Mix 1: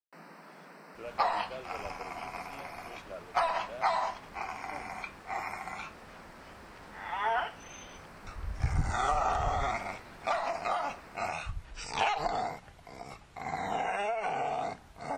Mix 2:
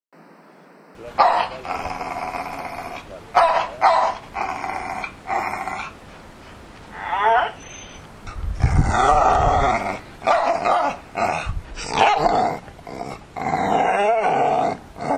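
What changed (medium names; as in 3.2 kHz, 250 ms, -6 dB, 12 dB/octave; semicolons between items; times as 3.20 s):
second sound +10.5 dB; master: add peaking EQ 320 Hz +7.5 dB 2.4 oct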